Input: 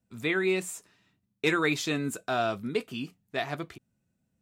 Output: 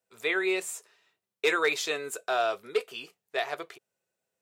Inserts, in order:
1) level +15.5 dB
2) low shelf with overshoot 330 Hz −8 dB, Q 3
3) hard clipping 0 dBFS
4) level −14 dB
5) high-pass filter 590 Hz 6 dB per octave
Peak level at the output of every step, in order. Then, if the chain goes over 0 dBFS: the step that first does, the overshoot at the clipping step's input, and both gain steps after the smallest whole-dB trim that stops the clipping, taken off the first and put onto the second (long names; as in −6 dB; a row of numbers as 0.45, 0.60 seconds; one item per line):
+1.5, +3.5, 0.0, −14.0, −12.0 dBFS
step 1, 3.5 dB
step 1 +11.5 dB, step 4 −10 dB